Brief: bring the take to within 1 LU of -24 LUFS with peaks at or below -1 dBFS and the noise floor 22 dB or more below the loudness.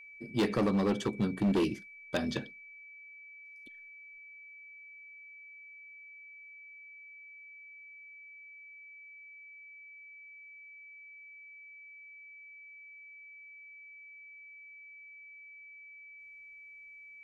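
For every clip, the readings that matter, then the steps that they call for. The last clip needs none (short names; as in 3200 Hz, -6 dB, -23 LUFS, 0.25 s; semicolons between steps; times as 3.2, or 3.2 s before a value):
clipped 0.8%; flat tops at -23.5 dBFS; steady tone 2300 Hz; tone level -49 dBFS; loudness -39.5 LUFS; peak -23.5 dBFS; loudness target -24.0 LUFS
-> clip repair -23.5 dBFS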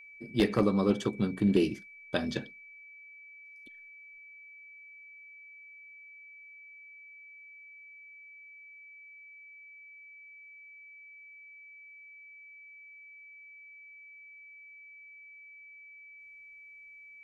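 clipped 0.0%; steady tone 2300 Hz; tone level -49 dBFS
-> notch 2300 Hz, Q 30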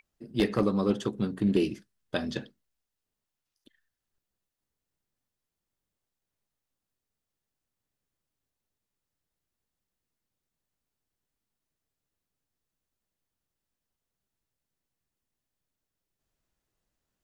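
steady tone none; loudness -29.5 LUFS; peak -14.0 dBFS; loudness target -24.0 LUFS
-> gain +5.5 dB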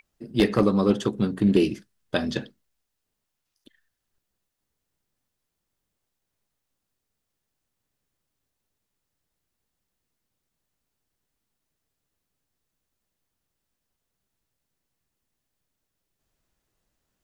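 loudness -24.0 LUFS; peak -8.5 dBFS; noise floor -82 dBFS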